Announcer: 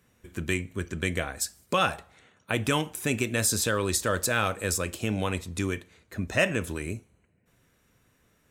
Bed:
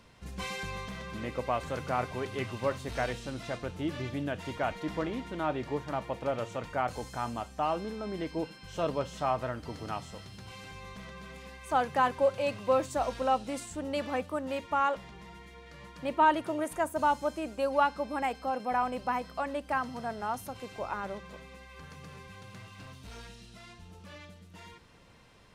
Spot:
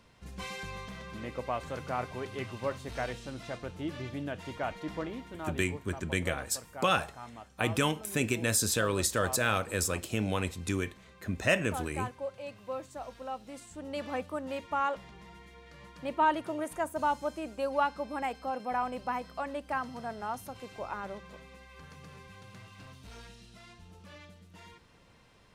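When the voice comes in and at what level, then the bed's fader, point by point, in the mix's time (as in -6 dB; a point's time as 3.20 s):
5.10 s, -2.5 dB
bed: 4.96 s -3 dB
5.90 s -11.5 dB
13.35 s -11.5 dB
14.11 s -2.5 dB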